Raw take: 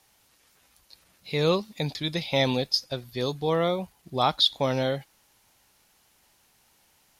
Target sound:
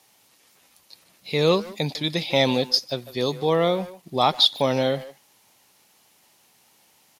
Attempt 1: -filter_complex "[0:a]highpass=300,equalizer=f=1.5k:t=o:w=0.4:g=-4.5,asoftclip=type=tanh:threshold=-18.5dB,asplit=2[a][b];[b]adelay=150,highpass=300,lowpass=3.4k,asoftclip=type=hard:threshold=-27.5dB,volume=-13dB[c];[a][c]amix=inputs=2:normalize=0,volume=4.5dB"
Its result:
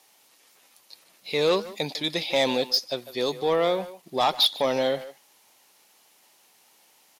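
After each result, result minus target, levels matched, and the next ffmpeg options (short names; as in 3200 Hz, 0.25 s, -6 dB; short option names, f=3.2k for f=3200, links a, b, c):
soft clip: distortion +17 dB; 125 Hz band -9.0 dB
-filter_complex "[0:a]highpass=300,equalizer=f=1.5k:t=o:w=0.4:g=-4.5,asoftclip=type=tanh:threshold=-7dB,asplit=2[a][b];[b]adelay=150,highpass=300,lowpass=3.4k,asoftclip=type=hard:threshold=-27.5dB,volume=-13dB[c];[a][c]amix=inputs=2:normalize=0,volume=4.5dB"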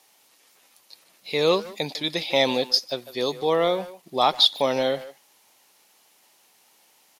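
125 Hz band -9.0 dB
-filter_complex "[0:a]highpass=140,equalizer=f=1.5k:t=o:w=0.4:g=-4.5,asoftclip=type=tanh:threshold=-7dB,asplit=2[a][b];[b]adelay=150,highpass=300,lowpass=3.4k,asoftclip=type=hard:threshold=-27.5dB,volume=-13dB[c];[a][c]amix=inputs=2:normalize=0,volume=4.5dB"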